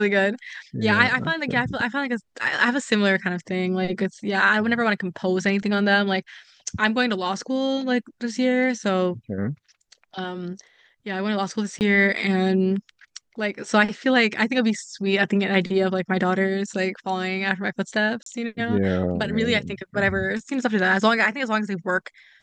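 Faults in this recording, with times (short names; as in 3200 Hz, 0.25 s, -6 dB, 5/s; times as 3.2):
11.79–11.81 gap 19 ms
18.23–18.26 gap 33 ms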